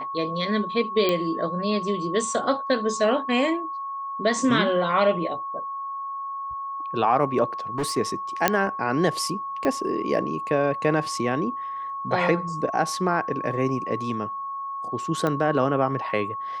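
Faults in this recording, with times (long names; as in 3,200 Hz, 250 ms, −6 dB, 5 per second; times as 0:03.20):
whistle 1,100 Hz −29 dBFS
0:01.09: click −9 dBFS
0:07.78–0:07.98: clipping −22 dBFS
0:08.48: click −3 dBFS
0:09.65: click −13 dBFS
0:15.27: click −13 dBFS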